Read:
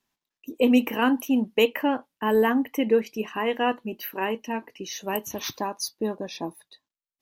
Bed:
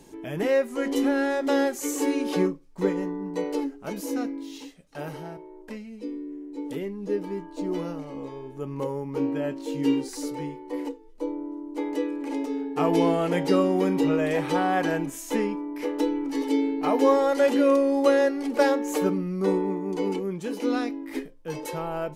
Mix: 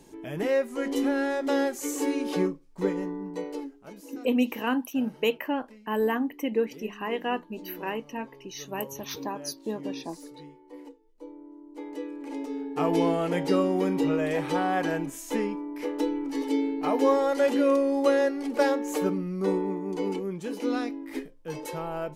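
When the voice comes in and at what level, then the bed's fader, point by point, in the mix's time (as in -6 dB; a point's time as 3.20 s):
3.65 s, -5.0 dB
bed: 3.19 s -2.5 dB
4.03 s -13.5 dB
11.32 s -13.5 dB
12.76 s -2.5 dB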